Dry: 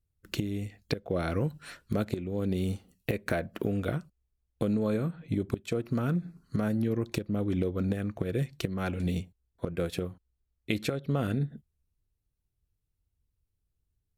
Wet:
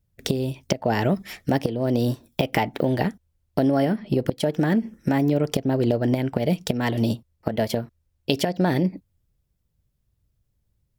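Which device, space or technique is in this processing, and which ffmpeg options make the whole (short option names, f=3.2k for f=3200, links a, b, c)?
nightcore: -af "asetrate=56889,aresample=44100,volume=8dB"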